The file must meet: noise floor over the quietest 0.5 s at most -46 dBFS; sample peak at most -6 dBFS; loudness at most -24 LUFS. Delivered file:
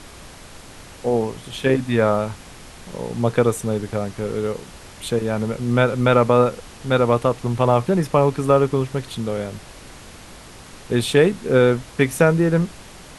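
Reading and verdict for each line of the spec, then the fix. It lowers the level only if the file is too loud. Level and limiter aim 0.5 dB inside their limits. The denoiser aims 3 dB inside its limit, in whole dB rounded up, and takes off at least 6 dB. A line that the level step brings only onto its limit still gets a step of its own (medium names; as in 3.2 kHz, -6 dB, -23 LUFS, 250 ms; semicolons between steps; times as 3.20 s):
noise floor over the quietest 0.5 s -41 dBFS: fail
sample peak -3.0 dBFS: fail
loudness -20.0 LUFS: fail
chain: noise reduction 6 dB, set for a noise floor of -41 dBFS; trim -4.5 dB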